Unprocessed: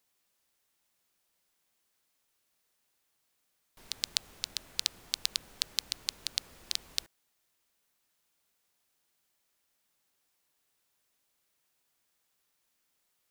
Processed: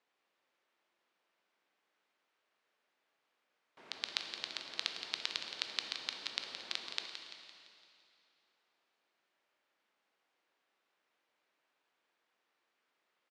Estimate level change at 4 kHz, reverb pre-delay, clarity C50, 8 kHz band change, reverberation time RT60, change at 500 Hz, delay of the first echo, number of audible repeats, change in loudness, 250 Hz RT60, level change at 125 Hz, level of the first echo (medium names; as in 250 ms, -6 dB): -4.5 dB, 8 ms, 4.0 dB, -13.5 dB, 2.6 s, +3.5 dB, 170 ms, 4, -5.0 dB, 2.7 s, under -10 dB, -10.0 dB